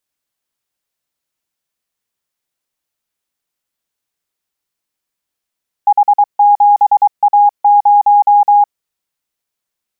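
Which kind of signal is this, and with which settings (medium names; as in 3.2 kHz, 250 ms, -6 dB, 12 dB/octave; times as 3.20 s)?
Morse "H7A0" 23 wpm 822 Hz -4.5 dBFS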